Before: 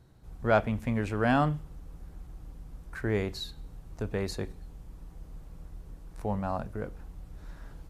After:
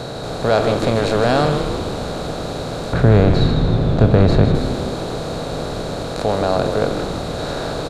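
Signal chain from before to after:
compressor on every frequency bin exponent 0.4
octave-band graphic EQ 125/500/1,000/4,000/8,000 Hz +7/+10/+3/+11/+8 dB
in parallel at −1 dB: brickwall limiter −9 dBFS, peak gain reduction 8 dB
0:02.93–0:04.55: on the sum: bass and treble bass +15 dB, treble −13 dB
on a send: echo with shifted repeats 156 ms, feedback 62%, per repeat −120 Hz, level −7.5 dB
on the sum: level −5.5 dB

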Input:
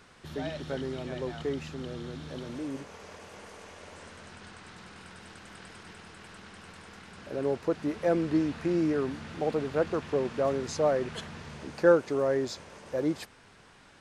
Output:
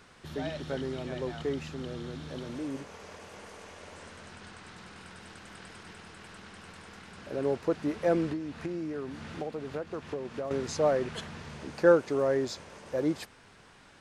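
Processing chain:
0:08.32–0:10.51: downward compressor 6 to 1, threshold −33 dBFS, peak gain reduction 12 dB

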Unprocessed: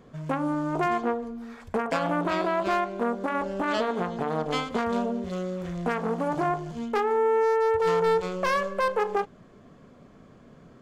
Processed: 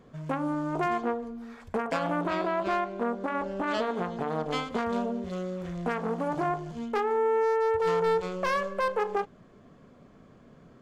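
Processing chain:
high-shelf EQ 6,600 Hz −2 dB, from 0:02.27 −9 dB, from 0:03.67 −3 dB
level −2.5 dB

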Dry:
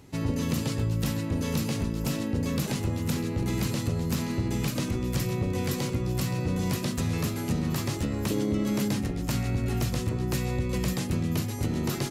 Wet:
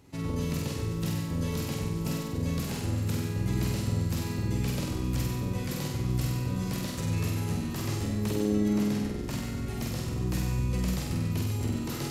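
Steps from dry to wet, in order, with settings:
0:08.68–0:09.33: high-shelf EQ 5,100 Hz −5.5 dB
on a send: flutter between parallel walls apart 8.2 metres, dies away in 1 s
on the sum: level −6 dB

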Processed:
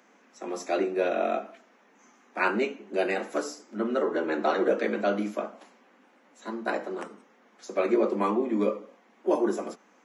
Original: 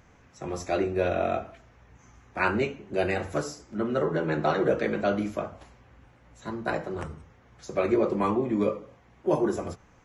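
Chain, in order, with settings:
Butterworth high-pass 200 Hz 72 dB per octave

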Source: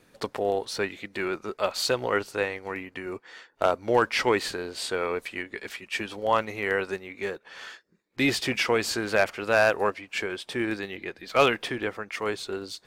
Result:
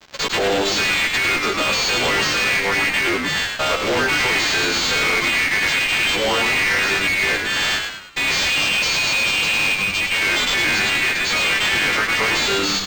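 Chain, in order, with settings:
every partial snapped to a pitch grid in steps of 2 semitones
meter weighting curve D
gain on a spectral selection 0:08.49–0:10.01, 210–2,400 Hz −27 dB
dynamic equaliser 2,300 Hz, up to +6 dB, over −30 dBFS, Q 1.3
in parallel at +2 dB: compressor whose output falls as the input rises −20 dBFS, ratio −0.5
on the sum: fuzz pedal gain 30 dB, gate −34 dBFS
echo with shifted repeats 104 ms, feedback 43%, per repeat −98 Hz, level −4.5 dB
linearly interpolated sample-rate reduction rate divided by 4×
level −4.5 dB

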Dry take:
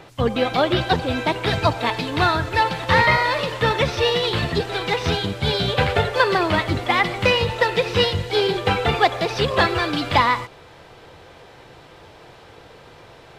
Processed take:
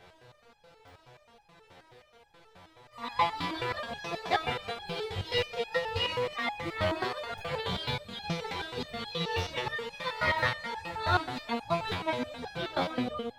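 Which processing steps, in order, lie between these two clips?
played backwards from end to start
parametric band 340 Hz −4.5 dB 0.48 octaves
delay that swaps between a low-pass and a high-pass 121 ms, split 1,500 Hz, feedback 78%, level −10 dB
regular buffer underruns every 0.50 s, samples 128, zero, from 0:00.88
step-sequenced resonator 9.4 Hz 90–830 Hz

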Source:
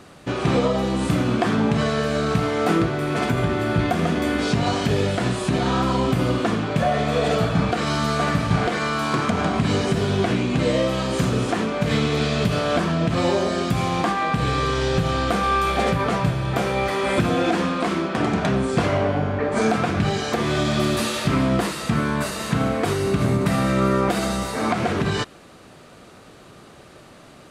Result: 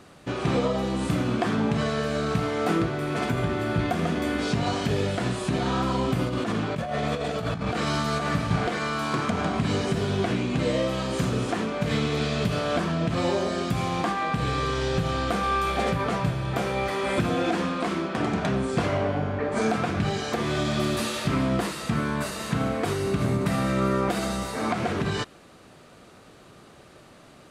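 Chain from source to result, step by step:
0:06.25–0:08.35: compressor whose output falls as the input rises −22 dBFS, ratio −0.5
level −4.5 dB

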